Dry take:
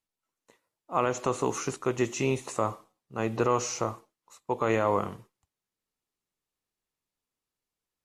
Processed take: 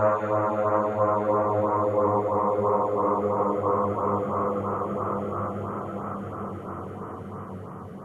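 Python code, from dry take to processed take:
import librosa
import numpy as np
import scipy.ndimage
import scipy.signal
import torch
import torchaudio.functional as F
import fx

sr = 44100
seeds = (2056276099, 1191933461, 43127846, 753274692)

y = fx.paulstretch(x, sr, seeds[0], factor=27.0, window_s=0.25, from_s=4.84)
y = fx.filter_lfo_notch(y, sr, shape='sine', hz=3.0, low_hz=920.0, high_hz=4300.0, q=1.3)
y = fx.high_shelf_res(y, sr, hz=2000.0, db=-7.0, q=1.5)
y = F.gain(torch.from_numpy(y), 1.5).numpy()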